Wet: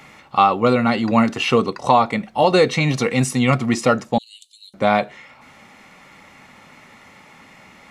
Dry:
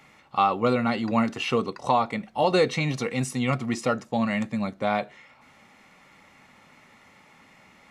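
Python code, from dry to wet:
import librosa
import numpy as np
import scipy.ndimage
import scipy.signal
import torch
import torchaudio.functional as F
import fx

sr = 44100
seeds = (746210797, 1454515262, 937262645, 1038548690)

p1 = fx.rider(x, sr, range_db=10, speed_s=0.5)
p2 = x + (p1 * librosa.db_to_amplitude(3.0))
y = fx.cheby_ripple_highpass(p2, sr, hz=2900.0, ripple_db=9, at=(4.18, 4.74))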